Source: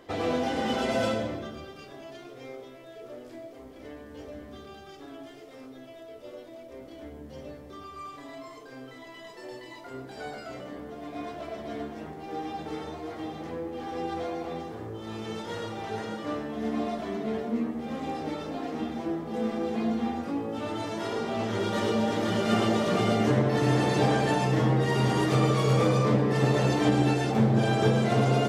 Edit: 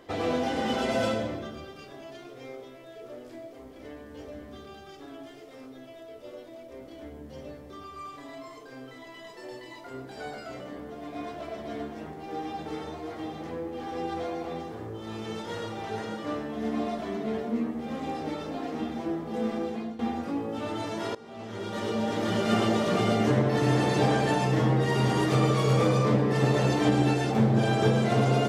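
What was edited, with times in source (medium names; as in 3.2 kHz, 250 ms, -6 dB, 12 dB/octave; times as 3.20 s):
19.57–19.99 s: fade out, to -15 dB
21.15–22.34 s: fade in, from -20 dB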